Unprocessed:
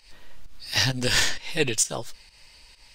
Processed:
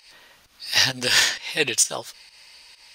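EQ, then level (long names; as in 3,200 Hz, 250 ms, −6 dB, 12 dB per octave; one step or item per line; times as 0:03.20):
high-pass filter 130 Hz 6 dB per octave
low-shelf EQ 430 Hz −10.5 dB
notch filter 7,600 Hz, Q 8.1
+5.0 dB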